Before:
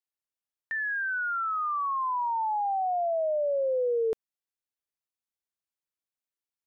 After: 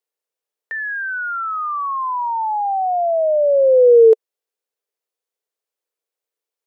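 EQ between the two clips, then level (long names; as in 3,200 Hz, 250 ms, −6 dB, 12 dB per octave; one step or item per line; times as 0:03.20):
high-pass with resonance 450 Hz, resonance Q 4.6
+5.0 dB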